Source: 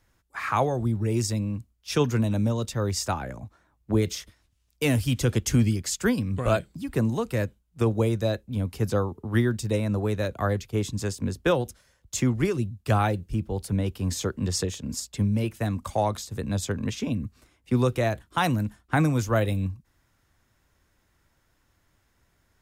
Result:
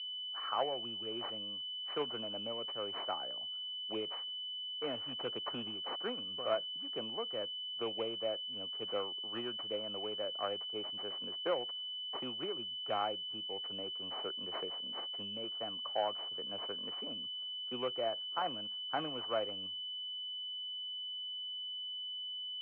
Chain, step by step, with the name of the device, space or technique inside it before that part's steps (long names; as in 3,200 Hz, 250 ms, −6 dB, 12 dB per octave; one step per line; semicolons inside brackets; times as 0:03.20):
toy sound module (linearly interpolated sample-rate reduction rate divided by 6×; switching amplifier with a slow clock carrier 3,000 Hz; loudspeaker in its box 680–3,800 Hz, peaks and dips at 940 Hz −6 dB, 1,700 Hz −6 dB, 3,500 Hz −4 dB)
level −4 dB